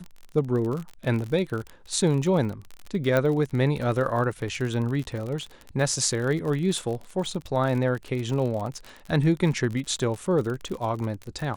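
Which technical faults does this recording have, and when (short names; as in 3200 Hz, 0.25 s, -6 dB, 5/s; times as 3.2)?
crackle 44/s -30 dBFS
3.17 pop -11 dBFS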